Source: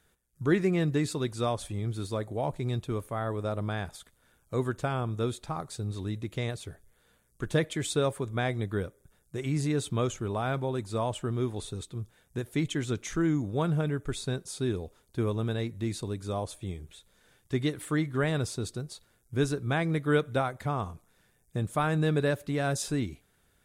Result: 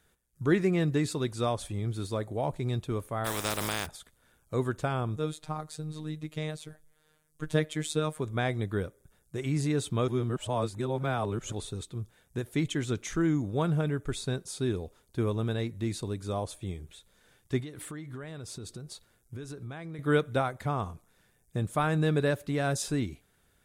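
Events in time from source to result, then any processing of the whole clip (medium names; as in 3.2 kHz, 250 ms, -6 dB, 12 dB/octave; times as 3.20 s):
3.24–3.85 s: spectral contrast reduction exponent 0.34
5.16–8.19 s: robot voice 154 Hz
10.08–11.52 s: reverse
17.60–19.99 s: compression 8:1, threshold -37 dBFS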